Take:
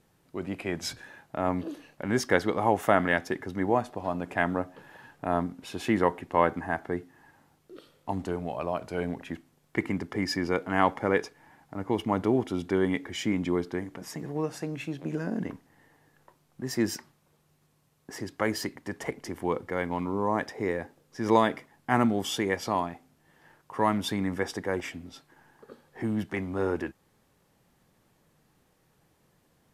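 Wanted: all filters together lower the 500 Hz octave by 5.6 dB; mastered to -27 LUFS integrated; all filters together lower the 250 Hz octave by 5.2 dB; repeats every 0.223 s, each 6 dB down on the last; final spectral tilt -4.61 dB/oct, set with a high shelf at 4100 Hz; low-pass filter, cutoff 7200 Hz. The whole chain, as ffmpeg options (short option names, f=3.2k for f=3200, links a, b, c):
-af "lowpass=7.2k,equalizer=f=250:t=o:g=-5,equalizer=f=500:t=o:g=-5.5,highshelf=f=4.1k:g=-8.5,aecho=1:1:223|446|669|892|1115|1338:0.501|0.251|0.125|0.0626|0.0313|0.0157,volume=5.5dB"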